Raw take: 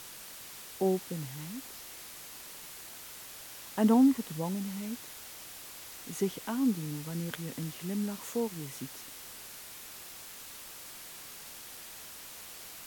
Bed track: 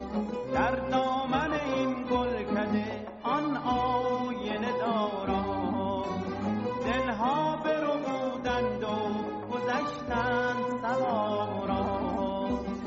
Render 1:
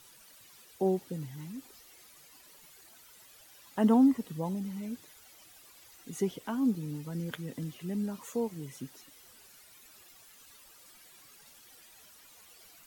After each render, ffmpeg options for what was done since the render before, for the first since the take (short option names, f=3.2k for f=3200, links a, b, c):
-af "afftdn=nr=13:nf=-47"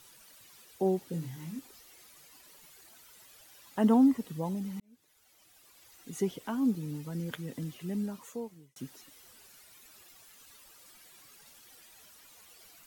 -filter_complex "[0:a]asettb=1/sr,asplit=3[a][b][c];[a]atrim=end=1.104[d];[b]atrim=start=1.1:end=1.59,asetpts=PTS-STARTPTS,afade=t=in:d=0.004:c=qsin,afade=t=out:st=0.486:d=0.004:c=qsin,asplit=2[e][f];[f]adelay=24,volume=-3.5dB[g];[e][g]amix=inputs=2:normalize=0,atrim=end_sample=21609[h];[c]atrim=start=1.586[i];[d][h]acrossfade=d=0.004:c1=hsin:c2=qsin[j];[j][i]acrossfade=d=0.004:c1=qsin:c2=hsin,asplit=3[k][l][m];[k]atrim=end=4.8,asetpts=PTS-STARTPTS,afade=t=out:st=4.796:d=0.004:c=hsin[n];[l]atrim=start=4.8:end=8.76,asetpts=PTS-STARTPTS,afade=t=in:d=1.38,afade=t=out:st=3.18:d=0.78[o];[m]atrim=start=8.76,asetpts=PTS-STARTPTS,afade=t=in:d=0.004:c=hsin[p];[n][o][p]concat=n=3:v=0:a=1"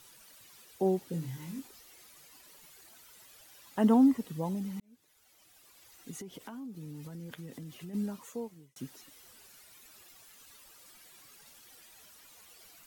-filter_complex "[0:a]asettb=1/sr,asplit=3[a][b][c];[a]atrim=end=1.264[d];[b]atrim=start=1.26:end=1.68,asetpts=PTS-STARTPTS,afade=t=in:d=0.004:c=qsin,afade=t=out:st=0.416:d=0.004:c=qsin,asplit=2[e][f];[f]adelay=22,volume=-6dB[g];[e][g]amix=inputs=2:normalize=0,atrim=end_sample=18522[h];[c]atrim=start=1.676[i];[d][h]acrossfade=d=0.004:c1=hsin:c2=qsin[j];[j][i]acrossfade=d=0.004:c1=qsin:c2=hsin,asplit=3[k][l][m];[k]afade=t=out:st=6.11:d=0.02[n];[l]acompressor=threshold=-40dB:ratio=12:attack=3.2:release=140:knee=1:detection=peak,afade=t=in:st=6.11:d=0.02,afade=t=out:st=7.93:d=0.02[o];[m]afade=t=in:st=7.93:d=0.02[p];[n][o][p]amix=inputs=3:normalize=0"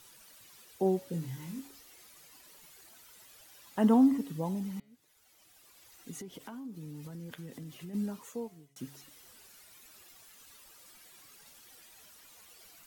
-af "bandreject=f=139.6:t=h:w=4,bandreject=f=279.2:t=h:w=4,bandreject=f=418.8:t=h:w=4,bandreject=f=558.4:t=h:w=4,bandreject=f=698:t=h:w=4,bandreject=f=837.6:t=h:w=4,bandreject=f=977.2:t=h:w=4,bandreject=f=1.1168k:t=h:w=4,bandreject=f=1.2564k:t=h:w=4,bandreject=f=1.396k:t=h:w=4,bandreject=f=1.5356k:t=h:w=4,bandreject=f=1.6752k:t=h:w=4,bandreject=f=1.8148k:t=h:w=4,bandreject=f=1.9544k:t=h:w=4,bandreject=f=2.094k:t=h:w=4,bandreject=f=2.2336k:t=h:w=4,bandreject=f=2.3732k:t=h:w=4,bandreject=f=2.5128k:t=h:w=4,bandreject=f=2.6524k:t=h:w=4,bandreject=f=2.792k:t=h:w=4,bandreject=f=2.9316k:t=h:w=4,bandreject=f=3.0712k:t=h:w=4,bandreject=f=3.2108k:t=h:w=4,bandreject=f=3.3504k:t=h:w=4,bandreject=f=3.49k:t=h:w=4,bandreject=f=3.6296k:t=h:w=4,bandreject=f=3.7692k:t=h:w=4,bandreject=f=3.9088k:t=h:w=4,bandreject=f=4.0484k:t=h:w=4,bandreject=f=4.188k:t=h:w=4,bandreject=f=4.3276k:t=h:w=4,bandreject=f=4.4672k:t=h:w=4,bandreject=f=4.6068k:t=h:w=4,bandreject=f=4.7464k:t=h:w=4,bandreject=f=4.886k:t=h:w=4"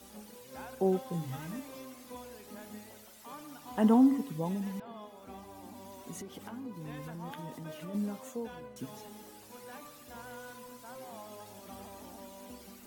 -filter_complex "[1:a]volume=-19dB[a];[0:a][a]amix=inputs=2:normalize=0"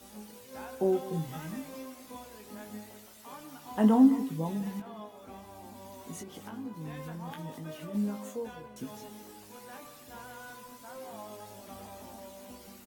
-filter_complex "[0:a]asplit=2[a][b];[b]adelay=19,volume=-5.5dB[c];[a][c]amix=inputs=2:normalize=0,aecho=1:1:204:0.15"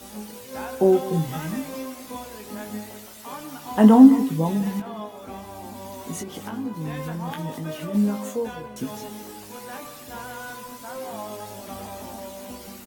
-af "volume=10dB"